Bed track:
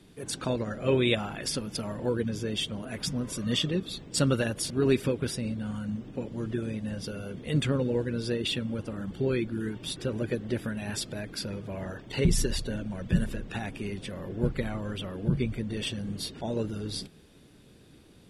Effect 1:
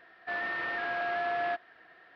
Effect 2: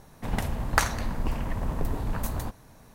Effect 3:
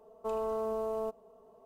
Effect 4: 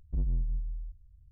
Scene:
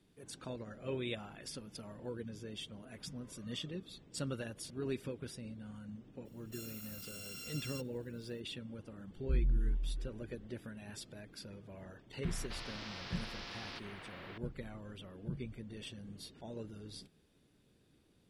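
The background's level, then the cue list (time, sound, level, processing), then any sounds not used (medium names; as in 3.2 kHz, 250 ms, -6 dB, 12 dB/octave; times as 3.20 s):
bed track -14.5 dB
6.25 s: add 1 -16.5 dB + bit-reversed sample order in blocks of 256 samples
9.16 s: add 4 -8 dB + tilt EQ -1.5 dB/octave
12.23 s: add 1 -11.5 dB + spectrum-flattening compressor 10:1
not used: 2, 3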